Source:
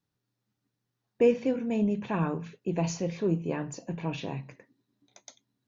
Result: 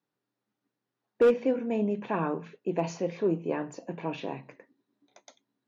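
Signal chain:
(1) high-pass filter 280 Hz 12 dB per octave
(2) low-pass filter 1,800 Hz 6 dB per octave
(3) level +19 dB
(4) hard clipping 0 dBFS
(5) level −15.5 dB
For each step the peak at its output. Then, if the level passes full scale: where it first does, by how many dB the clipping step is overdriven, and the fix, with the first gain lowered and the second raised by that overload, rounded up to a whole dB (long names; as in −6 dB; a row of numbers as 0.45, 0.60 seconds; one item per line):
−13.0, −13.5, +5.5, 0.0, −15.5 dBFS
step 3, 5.5 dB
step 3 +13 dB, step 5 −9.5 dB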